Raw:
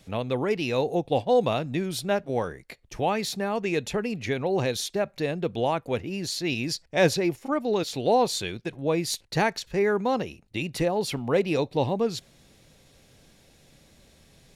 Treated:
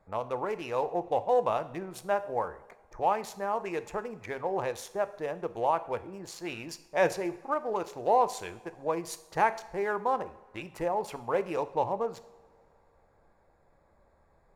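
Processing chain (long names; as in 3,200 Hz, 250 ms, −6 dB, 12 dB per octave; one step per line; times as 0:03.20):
adaptive Wiener filter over 15 samples
octave-band graphic EQ 125/250/1,000/4,000 Hz −10/−9/+9/−10 dB
coupled-rooms reverb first 0.64 s, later 2.9 s, from −19 dB, DRR 11.5 dB
level −4.5 dB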